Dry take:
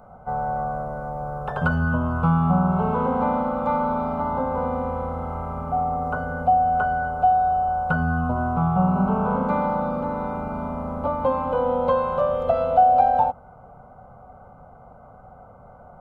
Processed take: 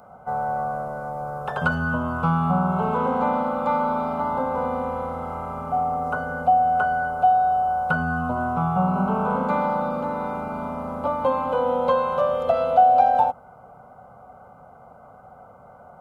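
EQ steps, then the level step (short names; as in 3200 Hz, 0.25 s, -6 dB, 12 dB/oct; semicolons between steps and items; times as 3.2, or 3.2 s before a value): HPF 170 Hz 6 dB/oct; high shelf 2400 Hz +8 dB; 0.0 dB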